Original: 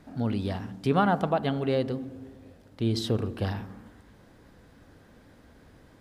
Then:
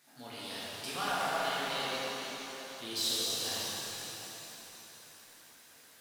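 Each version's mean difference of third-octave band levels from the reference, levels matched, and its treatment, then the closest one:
16.0 dB: first difference
gain into a clipping stage and back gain 34.5 dB
flanger 0.45 Hz, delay 5.4 ms, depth 7 ms, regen −51%
reverb with rising layers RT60 3.9 s, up +7 semitones, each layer −8 dB, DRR −9 dB
level +7 dB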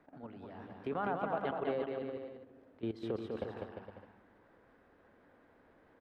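6.5 dB: three-way crossover with the lows and the highs turned down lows −13 dB, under 300 Hz, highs −21 dB, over 2,500 Hz
hum removal 63.03 Hz, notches 2
output level in coarse steps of 16 dB
on a send: bouncing-ball delay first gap 200 ms, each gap 0.75×, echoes 5
on the sum: level −3 dB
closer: second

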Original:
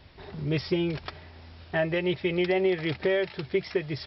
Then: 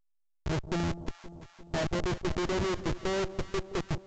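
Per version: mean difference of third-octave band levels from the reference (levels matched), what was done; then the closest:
9.0 dB: speech leveller 0.5 s
comparator with hysteresis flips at −25.5 dBFS
delay that swaps between a low-pass and a high-pass 174 ms, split 870 Hz, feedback 76%, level −13 dB
A-law companding 128 kbit/s 16,000 Hz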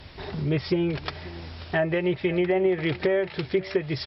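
2.5 dB: treble cut that deepens with the level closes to 1,700 Hz, closed at −21.5 dBFS
high-shelf EQ 4,700 Hz +5 dB
in parallel at +3 dB: downward compressor, threshold −37 dBFS, peak gain reduction 15 dB
on the sum: single-tap delay 536 ms −19 dB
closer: second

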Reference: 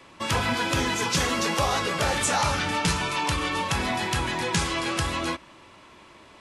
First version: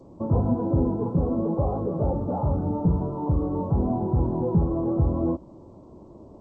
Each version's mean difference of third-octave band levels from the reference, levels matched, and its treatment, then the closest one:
18.0 dB: speech leveller 2 s
soft clipping −15.5 dBFS, distortion −22 dB
Gaussian smoothing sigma 14 samples
level +8 dB
G.722 64 kbit/s 16,000 Hz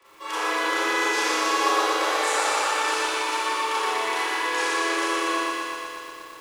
10.5 dB: Chebyshev high-pass with heavy ripple 300 Hz, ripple 6 dB
surface crackle 160 per second −40 dBFS
four-comb reverb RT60 1.4 s, combs from 28 ms, DRR −8.5 dB
feedback echo at a low word length 120 ms, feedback 80%, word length 8 bits, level −4 dB
level −6.5 dB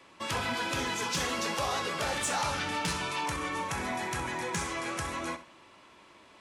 2.0 dB: gain on a spectral selection 0:03.26–0:05.37, 2,500–5,400 Hz −6 dB
low-shelf EQ 140 Hz −8 dB
soft clipping −16.5 dBFS, distortion −22 dB
flutter between parallel walls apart 11.1 metres, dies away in 0.31 s
level −5.5 dB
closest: third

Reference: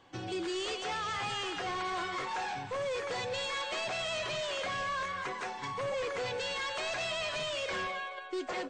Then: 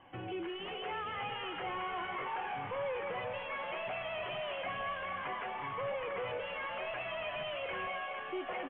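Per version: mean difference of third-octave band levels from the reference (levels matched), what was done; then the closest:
7.5 dB: brickwall limiter −35.5 dBFS, peak gain reduction 6.5 dB
flanger 1.5 Hz, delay 1 ms, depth 1.4 ms, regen −68%
Chebyshev low-pass with heavy ripple 3,100 Hz, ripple 3 dB
on a send: echo with shifted repeats 452 ms, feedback 61%, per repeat +61 Hz, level −9.5 dB
on the sum: level +7.5 dB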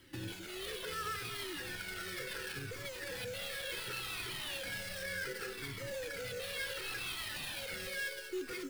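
10.0 dB: Chebyshev band-stop filter 540–1,300 Hz, order 5
brickwall limiter −36.5 dBFS, peak gain reduction 10.5 dB
sample-rate reduction 6,900 Hz, jitter 20%
flanger whose copies keep moving one way falling 0.69 Hz
level +8 dB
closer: first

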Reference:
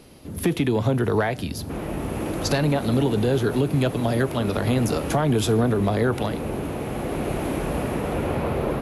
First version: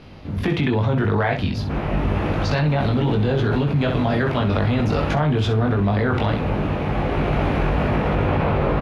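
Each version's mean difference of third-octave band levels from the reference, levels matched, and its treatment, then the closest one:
5.5 dB: parametric band 360 Hz −8 dB 1.7 octaves
ambience of single reflections 20 ms −3.5 dB, 64 ms −9 dB
in parallel at +2 dB: compressor whose output falls as the input rises −27 dBFS, ratio −1
on the sum: high-frequency loss of the air 240 metres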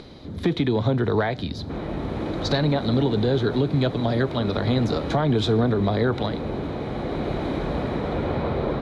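4.0 dB: parametric band 3,900 Hz +12.5 dB 0.26 octaves
notch filter 2,700 Hz, Q 8
upward compression, threshold −35 dBFS
high-frequency loss of the air 150 metres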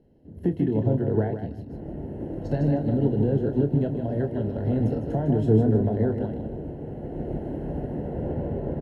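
11.5 dB: moving average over 37 samples
double-tracking delay 28 ms −8 dB
repeating echo 154 ms, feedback 27%, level −6 dB
expander for the loud parts 1.5 to 1, over −35 dBFS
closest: second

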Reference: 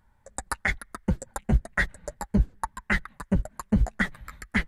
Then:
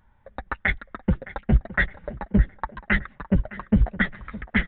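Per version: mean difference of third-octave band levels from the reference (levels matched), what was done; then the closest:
5.5 dB: dynamic equaliser 960 Hz, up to −5 dB, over −46 dBFS, Q 2
tape delay 613 ms, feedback 50%, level −15 dB, low-pass 2,400 Hz
downsampling to 8,000 Hz
level +3.5 dB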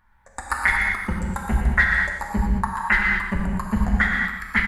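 8.5 dB: octave-band graphic EQ 125/500/1,000/2,000/8,000 Hz −5/−8/+7/+6/−6 dB
on a send: repeating echo 119 ms, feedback 34%, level −8.5 dB
on the sum: reverb whose tail is shaped and stops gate 260 ms flat, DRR −1 dB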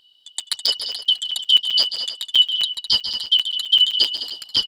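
15.0 dB: band-splitting scrambler in four parts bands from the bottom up 3412
on a send: multi-tap delay 140/207/211/308 ms −10.5/−11/−15/−15 dB
on the sum: regular buffer underruns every 0.13 s, samples 256, zero, from 0:00.40
level +6 dB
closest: first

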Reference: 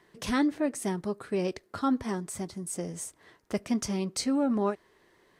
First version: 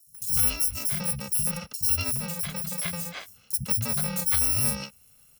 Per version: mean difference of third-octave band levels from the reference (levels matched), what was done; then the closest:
16.5 dB: samples in bit-reversed order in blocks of 128 samples
parametric band 140 Hz +4.5 dB 1.9 octaves
in parallel at +0.5 dB: downward compressor, threshold −34 dBFS, peak gain reduction 11.5 dB
on the sum: three-band delay without the direct sound highs, lows, mids 70/150 ms, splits 180/5,100 Hz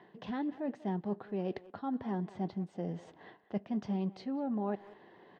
7.0 dB: reversed playback
downward compressor 5 to 1, threshold −42 dBFS, peak gain reduction 17 dB
reversed playback
loudspeaker in its box 120–3,200 Hz, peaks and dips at 200 Hz +6 dB, 770 Hz +8 dB, 1,300 Hz −7 dB, 2,300 Hz −9 dB
far-end echo of a speakerphone 190 ms, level −17 dB
level +5.5 dB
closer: second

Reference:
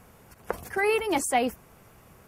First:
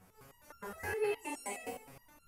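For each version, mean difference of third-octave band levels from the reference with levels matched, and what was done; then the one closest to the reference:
9.5 dB: downward compressor 3 to 1, threshold −35 dBFS, peak gain reduction 12 dB
dense smooth reverb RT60 0.98 s, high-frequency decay 0.9×, pre-delay 105 ms, DRR −9 dB
step-sequenced resonator 9.6 Hz 93–1,400 Hz
level +1 dB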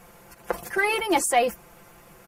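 3.0 dB: parametric band 110 Hz −6 dB 2.5 octaves
in parallel at −6 dB: soft clipping −22.5 dBFS, distortion −12 dB
on the sum: comb filter 5.8 ms, depth 71%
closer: second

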